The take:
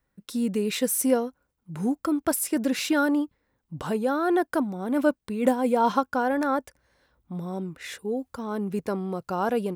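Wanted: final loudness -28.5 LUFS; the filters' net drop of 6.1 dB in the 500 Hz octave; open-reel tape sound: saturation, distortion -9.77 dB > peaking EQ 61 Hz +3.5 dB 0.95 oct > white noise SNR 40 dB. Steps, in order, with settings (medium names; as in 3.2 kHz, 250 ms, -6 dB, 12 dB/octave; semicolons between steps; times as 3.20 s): peaking EQ 500 Hz -7.5 dB; saturation -27.5 dBFS; peaking EQ 61 Hz +3.5 dB 0.95 oct; white noise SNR 40 dB; trim +4.5 dB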